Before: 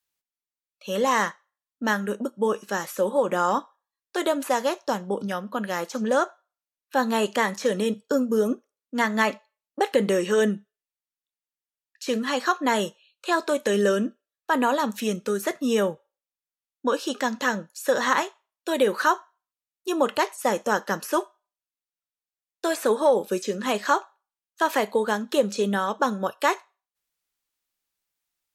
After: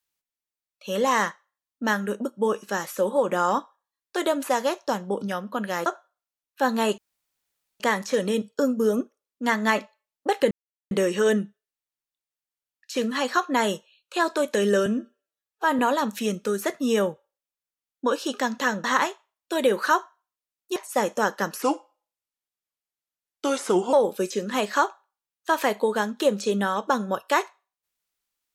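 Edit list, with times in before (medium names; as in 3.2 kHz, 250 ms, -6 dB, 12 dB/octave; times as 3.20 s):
5.86–6.20 s: delete
7.32 s: insert room tone 0.82 s
10.03 s: insert silence 0.40 s
13.98–14.60 s: stretch 1.5×
17.65–18.00 s: delete
19.92–20.25 s: delete
21.11–23.05 s: speed 84%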